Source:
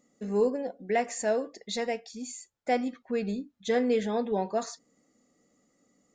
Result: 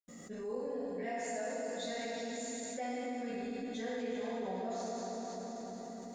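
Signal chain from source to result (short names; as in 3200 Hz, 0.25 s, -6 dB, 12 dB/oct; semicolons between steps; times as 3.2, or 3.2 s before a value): notches 50/100/150/200/250/300/350/400 Hz; reverb RT60 2.8 s, pre-delay 81 ms; fast leveller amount 70%; gain +5.5 dB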